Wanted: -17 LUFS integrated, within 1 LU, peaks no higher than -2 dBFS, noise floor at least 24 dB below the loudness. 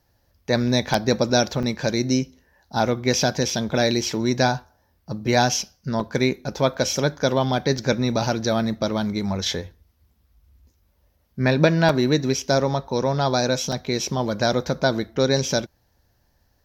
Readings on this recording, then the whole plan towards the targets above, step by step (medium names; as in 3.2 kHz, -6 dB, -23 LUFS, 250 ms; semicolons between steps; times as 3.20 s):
dropouts 8; longest dropout 2.9 ms; loudness -22.5 LUFS; peak level -3.0 dBFS; loudness target -17.0 LUFS
-> interpolate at 0.94/1.63/3.50/6.00/6.74/7.78/11.89/13.72 s, 2.9 ms; trim +5.5 dB; peak limiter -2 dBFS